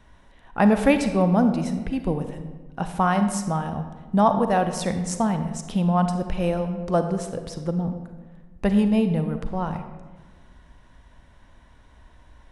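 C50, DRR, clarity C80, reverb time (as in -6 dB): 8.5 dB, 8.0 dB, 10.0 dB, 1.4 s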